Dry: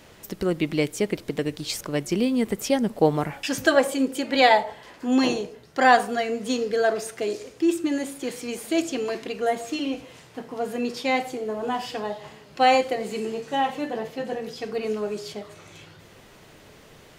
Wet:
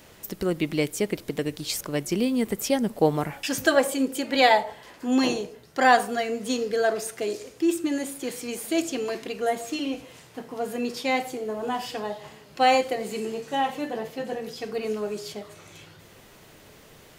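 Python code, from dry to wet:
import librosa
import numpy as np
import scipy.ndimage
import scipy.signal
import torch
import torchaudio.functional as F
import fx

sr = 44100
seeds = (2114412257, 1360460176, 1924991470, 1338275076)

y = fx.high_shelf(x, sr, hz=9900.0, db=9.5)
y = y * 10.0 ** (-1.5 / 20.0)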